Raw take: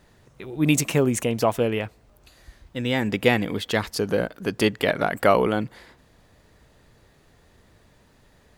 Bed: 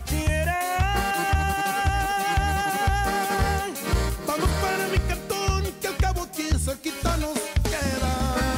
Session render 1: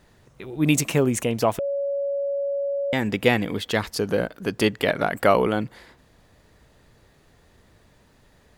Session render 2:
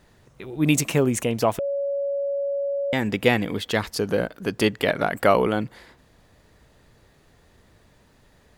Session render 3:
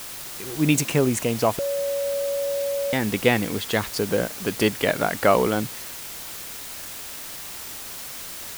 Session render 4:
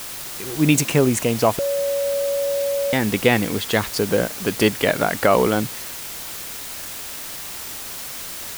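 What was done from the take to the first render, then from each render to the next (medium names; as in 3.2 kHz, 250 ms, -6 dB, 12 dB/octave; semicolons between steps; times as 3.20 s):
1.59–2.93 s: bleep 561 Hz -22.5 dBFS
no audible change
word length cut 6-bit, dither triangular
trim +3.5 dB; peak limiter -3 dBFS, peak gain reduction 3 dB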